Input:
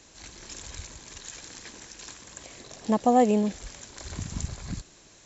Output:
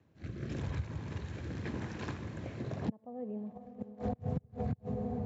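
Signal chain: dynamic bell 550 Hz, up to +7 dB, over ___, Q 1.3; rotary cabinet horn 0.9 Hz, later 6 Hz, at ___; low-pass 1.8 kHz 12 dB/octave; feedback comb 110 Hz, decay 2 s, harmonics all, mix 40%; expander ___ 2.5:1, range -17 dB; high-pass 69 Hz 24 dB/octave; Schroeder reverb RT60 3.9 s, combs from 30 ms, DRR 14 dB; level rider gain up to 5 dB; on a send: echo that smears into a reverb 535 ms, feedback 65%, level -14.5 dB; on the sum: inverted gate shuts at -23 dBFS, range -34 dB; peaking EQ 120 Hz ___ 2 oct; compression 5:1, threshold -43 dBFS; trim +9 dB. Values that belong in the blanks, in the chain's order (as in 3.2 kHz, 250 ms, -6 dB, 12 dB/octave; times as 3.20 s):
-37 dBFS, 2.91 s, -52 dBFS, +14.5 dB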